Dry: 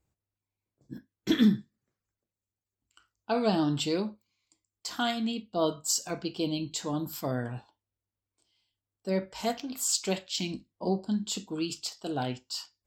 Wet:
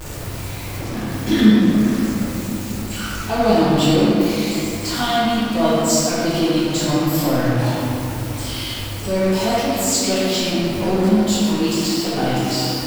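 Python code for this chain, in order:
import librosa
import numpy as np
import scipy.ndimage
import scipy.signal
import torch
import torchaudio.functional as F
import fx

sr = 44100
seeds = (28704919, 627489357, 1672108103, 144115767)

y = x + 0.5 * 10.0 ** (-29.5 / 20.0) * np.sign(x)
y = fx.room_shoebox(y, sr, seeds[0], volume_m3=120.0, walls='hard', distance_m=1.0)
y = y * librosa.db_to_amplitude(1.0)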